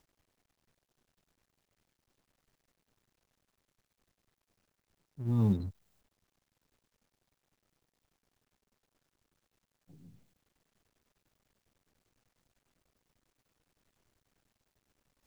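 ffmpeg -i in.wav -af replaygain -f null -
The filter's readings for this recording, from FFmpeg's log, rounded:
track_gain = +46.3 dB
track_peak = 0.090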